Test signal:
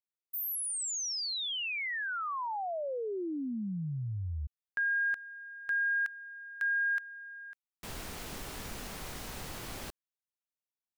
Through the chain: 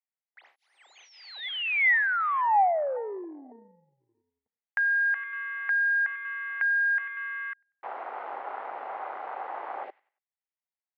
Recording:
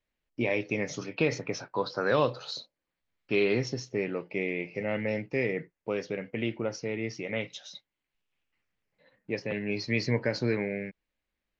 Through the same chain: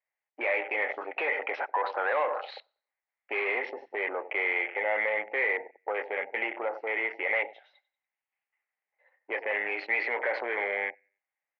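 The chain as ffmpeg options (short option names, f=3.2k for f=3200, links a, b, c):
-filter_complex "[0:a]asplit=2[a][b];[b]aecho=0:1:94|188|282:0.119|0.0404|0.0137[c];[a][c]amix=inputs=2:normalize=0,afwtdn=0.00708,asplit=2[d][e];[e]highpass=f=720:p=1,volume=19dB,asoftclip=type=tanh:threshold=-13dB[f];[d][f]amix=inputs=2:normalize=0,lowpass=f=1.9k:p=1,volume=-6dB,acompressor=threshold=-27dB:ratio=3:attack=3.1:release=41:knee=1,highpass=f=440:w=0.5412,highpass=f=440:w=1.3066,equalizer=f=450:t=q:w=4:g=-3,equalizer=f=800:t=q:w=4:g=9,equalizer=f=2k:t=q:w=4:g=9,lowpass=f=2.8k:w=0.5412,lowpass=f=2.8k:w=1.3066"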